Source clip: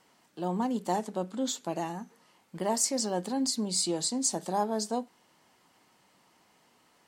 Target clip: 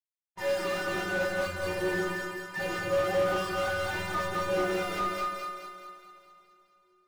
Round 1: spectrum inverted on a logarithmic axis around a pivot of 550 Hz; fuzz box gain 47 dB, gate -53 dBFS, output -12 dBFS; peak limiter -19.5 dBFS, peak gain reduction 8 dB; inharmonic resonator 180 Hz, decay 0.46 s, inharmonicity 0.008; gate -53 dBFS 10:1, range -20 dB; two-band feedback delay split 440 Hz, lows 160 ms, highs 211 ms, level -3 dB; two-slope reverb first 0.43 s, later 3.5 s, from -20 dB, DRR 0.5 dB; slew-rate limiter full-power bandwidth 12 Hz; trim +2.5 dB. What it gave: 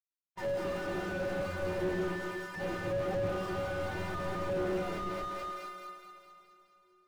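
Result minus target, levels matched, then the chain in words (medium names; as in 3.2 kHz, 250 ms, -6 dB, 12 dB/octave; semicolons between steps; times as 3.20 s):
slew-rate limiter: distortion +12 dB
spectrum inverted on a logarithmic axis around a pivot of 550 Hz; fuzz box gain 47 dB, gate -53 dBFS, output -12 dBFS; peak limiter -19.5 dBFS, peak gain reduction 8 dB; inharmonic resonator 180 Hz, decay 0.46 s, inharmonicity 0.008; gate -53 dBFS 10:1, range -20 dB; two-band feedback delay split 440 Hz, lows 160 ms, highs 211 ms, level -3 dB; two-slope reverb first 0.43 s, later 3.5 s, from -20 dB, DRR 0.5 dB; slew-rate limiter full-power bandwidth 40 Hz; trim +2.5 dB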